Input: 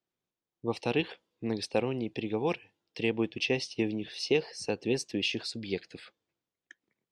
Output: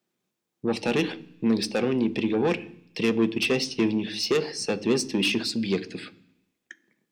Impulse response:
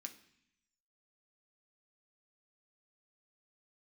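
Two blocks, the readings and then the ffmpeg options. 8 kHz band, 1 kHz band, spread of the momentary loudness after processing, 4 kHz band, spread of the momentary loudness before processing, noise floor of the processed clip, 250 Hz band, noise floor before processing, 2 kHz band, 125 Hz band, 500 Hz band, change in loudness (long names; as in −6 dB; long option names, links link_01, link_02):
+8.5 dB, +4.5 dB, 8 LU, +6.0 dB, 9 LU, −82 dBFS, +8.5 dB, below −85 dBFS, +5.5 dB, +4.5 dB, +5.0 dB, +6.5 dB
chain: -filter_complex "[0:a]asoftclip=type=tanh:threshold=-27dB,asplit=2[link_01][link_02];[1:a]atrim=start_sample=2205,lowshelf=frequency=460:gain=10.5[link_03];[link_02][link_03]afir=irnorm=-1:irlink=0,volume=1.5dB[link_04];[link_01][link_04]amix=inputs=2:normalize=0,volume=4.5dB"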